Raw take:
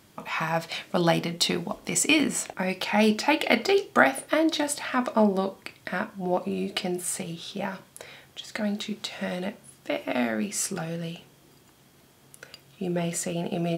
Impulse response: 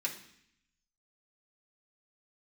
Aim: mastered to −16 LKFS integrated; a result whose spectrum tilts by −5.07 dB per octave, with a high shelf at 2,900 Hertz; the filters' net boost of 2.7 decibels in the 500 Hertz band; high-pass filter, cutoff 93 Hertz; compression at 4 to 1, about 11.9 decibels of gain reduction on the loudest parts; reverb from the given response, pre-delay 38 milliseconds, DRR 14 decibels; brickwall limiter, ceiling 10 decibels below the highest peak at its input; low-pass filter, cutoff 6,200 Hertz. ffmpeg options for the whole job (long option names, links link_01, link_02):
-filter_complex "[0:a]highpass=93,lowpass=6200,equalizer=frequency=500:width_type=o:gain=4,highshelf=frequency=2900:gain=-8.5,acompressor=threshold=-29dB:ratio=4,alimiter=limit=-24dB:level=0:latency=1,asplit=2[link_01][link_02];[1:a]atrim=start_sample=2205,adelay=38[link_03];[link_02][link_03]afir=irnorm=-1:irlink=0,volume=-17dB[link_04];[link_01][link_04]amix=inputs=2:normalize=0,volume=20dB"